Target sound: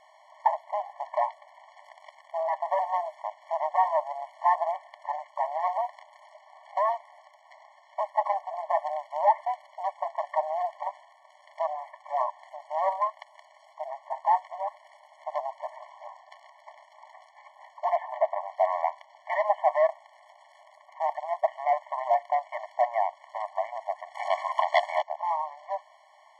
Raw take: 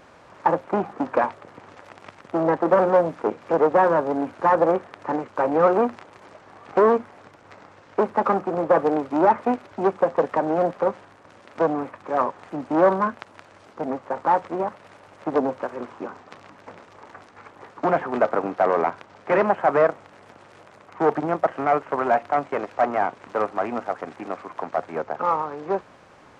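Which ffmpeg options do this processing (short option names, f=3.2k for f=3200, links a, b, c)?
-filter_complex "[0:a]asettb=1/sr,asplit=3[a][b][c];[a]atrim=end=17.964[d];[b]atrim=start=17.96:end=18.48,asetpts=PTS-STARTPTS,afade=t=in:d=0.004:c=qsin,afade=t=out:st=0.516:d=0.004:c=qsin,acrossover=split=2800[e][f];[f]acompressor=threshold=-57dB:ratio=4:attack=1:release=60[g];[e][g]amix=inputs=2:normalize=0[h];[c]atrim=start=18.476[i];[d][h]acrossfade=d=0.004:c1=hsin:c2=qsin[j];[j][i]acrossfade=d=0.004:c1=qsin:c2=hsin,asplit=3[k][l][m];[k]afade=t=out:st=24.14:d=0.02[n];[l]aeval=exprs='0.316*sin(PI/2*3.16*val(0)/0.316)':c=same,afade=t=in:st=24.14:d=0.02,afade=t=out:st=25.01:d=0.02[o];[m]afade=t=in:st=25.01:d=0.02[p];[n][o][p]amix=inputs=3:normalize=0,afftfilt=real='re*eq(mod(floor(b*sr/1024/580),2),1)':imag='im*eq(mod(floor(b*sr/1024/580),2),1)':win_size=1024:overlap=0.75,volume=-3dB"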